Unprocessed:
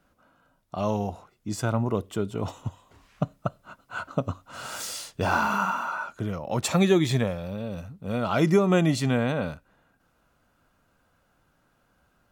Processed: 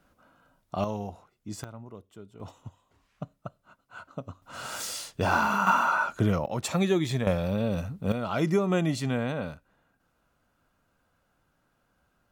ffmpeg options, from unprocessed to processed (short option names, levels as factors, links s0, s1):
-af "asetnsamples=n=441:p=0,asendcmd='0.84 volume volume -6.5dB;1.64 volume volume -18.5dB;2.4 volume volume -11dB;4.42 volume volume -0.5dB;5.67 volume volume 6dB;6.46 volume volume -4.5dB;7.27 volume volume 5.5dB;8.12 volume volume -4.5dB',volume=1.12"